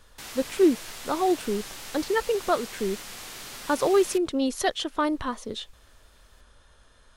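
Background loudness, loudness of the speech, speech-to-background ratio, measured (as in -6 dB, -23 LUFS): -38.5 LUFS, -26.5 LUFS, 12.0 dB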